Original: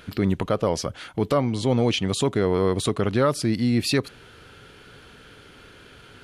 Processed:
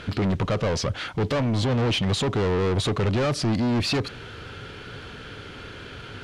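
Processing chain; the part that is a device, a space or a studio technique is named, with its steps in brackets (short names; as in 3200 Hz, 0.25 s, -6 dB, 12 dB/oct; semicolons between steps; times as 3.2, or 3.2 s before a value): open-reel tape (soft clip -29.5 dBFS, distortion -5 dB; bell 99 Hz +4.5 dB 0.82 oct; white noise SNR 33 dB); LPF 5600 Hz 12 dB/oct; gain +8 dB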